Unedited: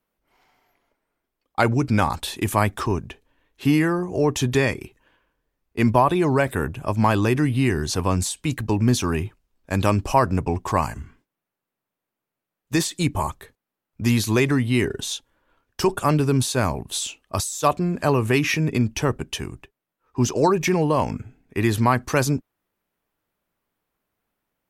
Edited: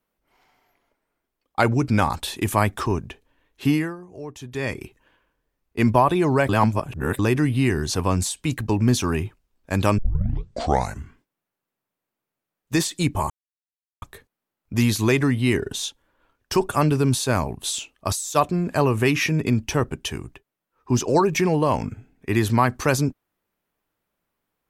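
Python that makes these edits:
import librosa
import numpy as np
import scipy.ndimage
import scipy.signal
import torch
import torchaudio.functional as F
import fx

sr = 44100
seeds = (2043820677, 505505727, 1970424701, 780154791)

y = fx.edit(x, sr, fx.fade_down_up(start_s=3.66, length_s=1.16, db=-15.5, fade_s=0.3),
    fx.reverse_span(start_s=6.49, length_s=0.7),
    fx.tape_start(start_s=9.98, length_s=1.01),
    fx.insert_silence(at_s=13.3, length_s=0.72), tone=tone)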